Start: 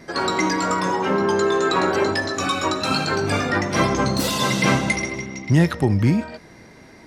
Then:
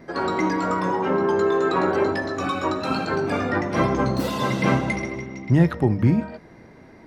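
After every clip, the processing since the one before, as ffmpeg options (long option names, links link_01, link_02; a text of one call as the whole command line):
ffmpeg -i in.wav -af "equalizer=frequency=8100:width=0.31:gain=-14,bandreject=frequency=50:width_type=h:width=6,bandreject=frequency=100:width_type=h:width=6,bandreject=frequency=150:width_type=h:width=6,bandreject=frequency=200:width_type=h:width=6" out.wav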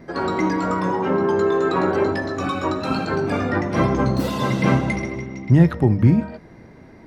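ffmpeg -i in.wav -af "lowshelf=frequency=240:gain=5.5" out.wav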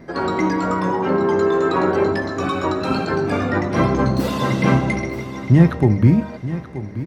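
ffmpeg -i in.wav -af "aecho=1:1:929|1858|2787:0.2|0.0718|0.0259,volume=1.5dB" out.wav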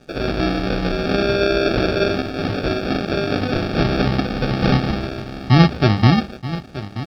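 ffmpeg -i in.wav -af "aresample=11025,acrusher=samples=11:mix=1:aa=0.000001,aresample=44100,aeval=exprs='sgn(val(0))*max(abs(val(0))-0.00631,0)':channel_layout=same" out.wav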